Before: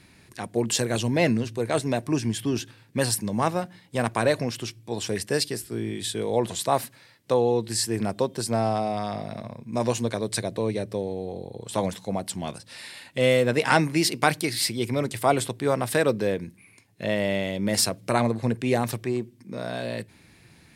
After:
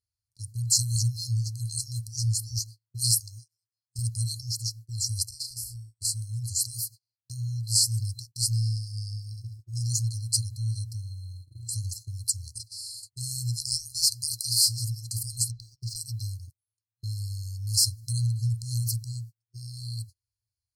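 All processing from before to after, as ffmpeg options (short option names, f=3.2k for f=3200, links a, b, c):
-filter_complex "[0:a]asettb=1/sr,asplit=3[a][b][c];[a]atrim=end=3.204[d];[b]atrim=start=3.2:end=3.99,asetpts=PTS-STARTPTS,afade=t=in:d=0.004:c=qsin,afade=t=out:st=0.786:d=0.004:c=qsin,lowshelf=f=180:g=-11.5,acompressor=threshold=-28dB:ratio=5:attack=3.2:release=140:knee=1:detection=peak,highpass=f=100:w=0.5412,highpass=f=100:w=1.3066[e];[c]atrim=start=3.986[f];[d][e]acrossfade=d=0.004:c1=hsin:c2=qsin[g];[g][f]acrossfade=d=0.004:c1=qsin:c2=hsin,asettb=1/sr,asplit=3[h][i][j];[h]atrim=end=5.294[k];[i]atrim=start=5.29:end=6.05,asetpts=PTS-STARTPTS,afade=t=in:d=0.004:c=qsin,afade=t=out:st=0.756:d=0.004:c=qsin,acompressor=threshold=-35dB:ratio=8:attack=3.2:release=140:knee=1:detection=peak,asplit=2[l][m];[m]adelay=33,volume=-3dB[n];[l][n]amix=inputs=2:normalize=0,atrim=end_sample=33516[o];[j]atrim=start=6.046[p];[k][o]acrossfade=d=0.004:c1=hsin:c2=qsin[q];[q][p]acrossfade=d=0.004:c1=qsin:c2=hsin,asettb=1/sr,asplit=3[r][s][t];[r]atrim=end=12.294[u];[s]atrim=start=12.29:end=14.92,asetpts=PTS-STARTPTS,afade=t=in:d=0.004:c=qsin,afade=t=out:st=2.626:d=0.004:c=qsin,equalizer=f=8.8k:w=0.6:g=2.5,aecho=1:1:735:0.1,atrim=end_sample=115983[v];[t]atrim=start=14.916[w];[u][v]acrossfade=d=0.004:c1=hsin:c2=qsin[x];[x][w]acrossfade=d=0.004:c1=qsin:c2=hsin,asettb=1/sr,asplit=3[y][z][aa];[y]atrim=end=15.504[ab];[z]atrim=start=15.5:end=15.96,asetpts=PTS-STARTPTS,afade=t=in:d=0.004:c=qsin,afade=t=out:st=0.456:d=0.004:c=qsin,lowpass=f=5.9k:w=0.5412,lowpass=f=5.9k:w=1.3066,asubboost=boost=3.5:cutoff=120,aeval=exprs='sgn(val(0))*max(abs(val(0))-0.00282,0)':c=same[ac];[aa]atrim=start=15.956[ad];[ab][ac]acrossfade=d=0.004:c1=hsin:c2=qsin[ae];[ae][ad]acrossfade=d=0.004:c1=qsin:c2=hsin,afftfilt=real='re*(1-between(b*sr/4096,120,4100))':imag='im*(1-between(b*sr/4096,120,4100))':win_size=4096:overlap=0.75,agate=range=-37dB:threshold=-47dB:ratio=16:detection=peak,alimiter=level_in=15dB:limit=-1dB:release=50:level=0:latency=1,volume=-9dB"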